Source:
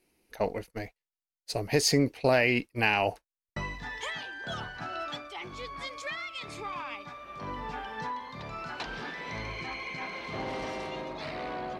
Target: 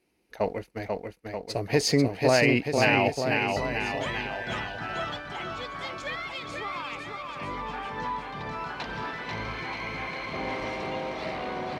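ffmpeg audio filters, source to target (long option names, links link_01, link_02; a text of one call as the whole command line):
ffmpeg -i in.wav -filter_complex "[0:a]highpass=42,highshelf=frequency=6900:gain=-9,asplit=2[link_01][link_02];[link_02]aeval=exprs='sgn(val(0))*max(abs(val(0))-0.00237,0)':channel_layout=same,volume=-11dB[link_03];[link_01][link_03]amix=inputs=2:normalize=0,aecho=1:1:490|931|1328|1685|2007:0.631|0.398|0.251|0.158|0.1" out.wav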